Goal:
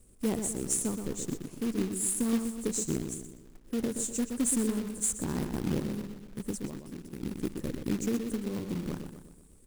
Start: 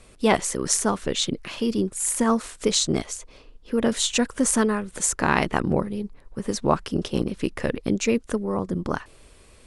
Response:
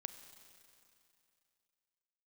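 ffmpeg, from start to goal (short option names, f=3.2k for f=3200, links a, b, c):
-filter_complex "[0:a]firequalizer=gain_entry='entry(310,0);entry(670,-14);entry(3300,-25);entry(7500,2)':delay=0.05:min_phase=1,asettb=1/sr,asplit=3[a][b][c];[a]atrim=end=6.654[d];[b]atrim=start=6.65:end=7.23,asetpts=PTS-STARTPTS,afade=t=in:d=0.004:c=qsin,afade=t=out:st=0.576:d=0.004:c=qsin,acompressor=threshold=-34dB:ratio=4[e];[c]atrim=start=7.226[f];[d][e]acrossfade=d=0.004:c1=hsin:c2=qsin[g];[g][f]acrossfade=d=0.004:c1=qsin:c2=hsin,asplit=2[h][i];[i]adelay=123,lowpass=f=3.6k:p=1,volume=-6.5dB,asplit=2[j][k];[k]adelay=123,lowpass=f=3.6k:p=1,volume=0.5,asplit=2[l][m];[m]adelay=123,lowpass=f=3.6k:p=1,volume=0.5,asplit=2[n][o];[o]adelay=123,lowpass=f=3.6k:p=1,volume=0.5,asplit=2[p][q];[q]adelay=123,lowpass=f=3.6k:p=1,volume=0.5,asplit=2[r][s];[s]adelay=123,lowpass=f=3.6k:p=1,volume=0.5[t];[h][j][l][n][p][r][t]amix=inputs=7:normalize=0,acrusher=bits=3:mode=log:mix=0:aa=0.000001,volume=-7dB"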